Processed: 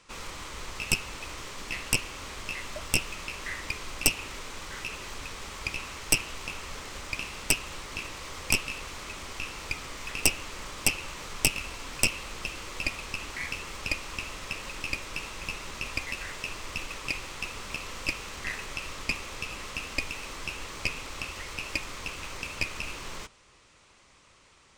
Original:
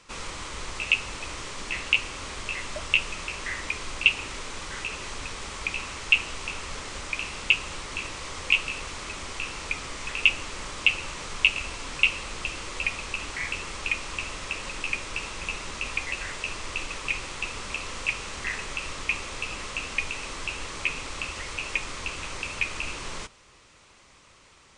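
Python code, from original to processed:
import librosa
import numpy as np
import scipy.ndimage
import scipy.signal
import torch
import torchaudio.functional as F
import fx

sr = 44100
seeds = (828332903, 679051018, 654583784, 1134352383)

y = fx.tracing_dist(x, sr, depth_ms=0.27)
y = F.gain(torch.from_numpy(y), -3.5).numpy()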